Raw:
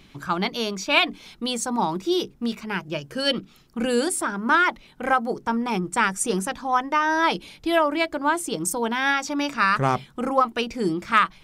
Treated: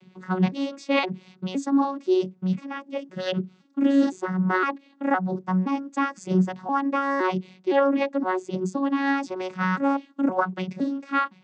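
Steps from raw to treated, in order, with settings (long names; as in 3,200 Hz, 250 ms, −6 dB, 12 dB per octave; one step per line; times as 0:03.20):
vocoder with an arpeggio as carrier bare fifth, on F#3, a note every 514 ms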